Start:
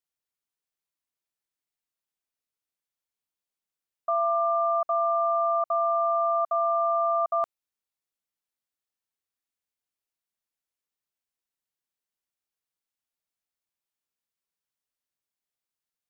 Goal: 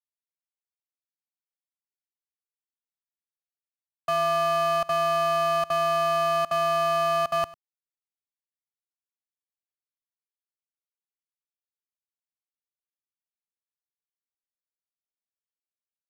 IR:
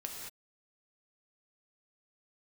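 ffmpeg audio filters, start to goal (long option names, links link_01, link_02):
-af "aeval=exprs='sgn(val(0))*max(abs(val(0))-0.00447,0)':channel_layout=same,bass=frequency=250:gain=11,treble=frequency=4000:gain=6,asoftclip=type=tanh:threshold=-28dB,aecho=1:1:99:0.0891,volume=7dB"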